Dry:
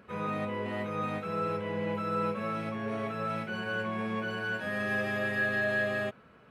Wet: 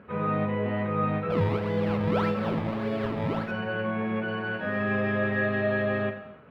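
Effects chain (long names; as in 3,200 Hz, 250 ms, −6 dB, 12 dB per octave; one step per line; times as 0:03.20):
0:01.30–0:03.51: sample-and-hold swept by an LFO 21×, swing 100% 1.7 Hz
high-frequency loss of the air 410 metres
reverb whose tail is shaped and stops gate 340 ms falling, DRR 6.5 dB
level +6 dB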